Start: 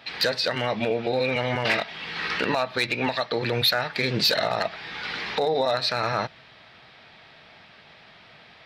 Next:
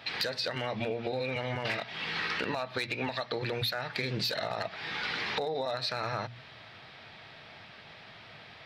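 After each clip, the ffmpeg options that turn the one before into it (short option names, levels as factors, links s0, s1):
-af "equalizer=f=110:t=o:w=0.57:g=6.5,bandreject=f=60:t=h:w=6,bandreject=f=120:t=h:w=6,bandreject=f=180:t=h:w=6,bandreject=f=240:t=h:w=6,acompressor=threshold=0.0316:ratio=6"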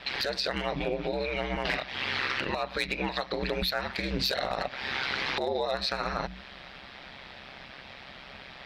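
-filter_complex "[0:a]asplit=2[s0][s1];[s1]alimiter=level_in=1.26:limit=0.0631:level=0:latency=1:release=137,volume=0.794,volume=1.26[s2];[s0][s2]amix=inputs=2:normalize=0,aeval=exprs='val(0)*sin(2*PI*66*n/s)':c=same"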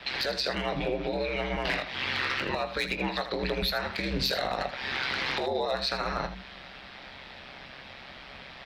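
-filter_complex "[0:a]acrossover=split=140|580|6500[s0][s1][s2][s3];[s2]volume=10.6,asoftclip=hard,volume=0.0944[s4];[s0][s1][s4][s3]amix=inputs=4:normalize=0,aecho=1:1:21|80:0.282|0.282"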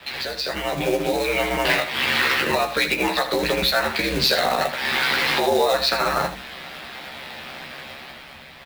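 -filter_complex "[0:a]acrossover=split=150[s0][s1];[s1]dynaudnorm=f=120:g=13:m=2.51[s2];[s0][s2]amix=inputs=2:normalize=0,acrusher=bits=3:mode=log:mix=0:aa=0.000001,asplit=2[s3][s4];[s4]adelay=13,volume=0.668[s5];[s3][s5]amix=inputs=2:normalize=0"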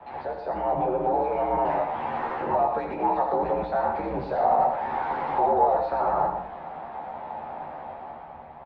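-filter_complex "[0:a]asoftclip=type=tanh:threshold=0.0841,lowpass=f=840:t=q:w=4.9,asplit=2[s0][s1];[s1]aecho=0:1:118:0.398[s2];[s0][s2]amix=inputs=2:normalize=0,volume=0.668"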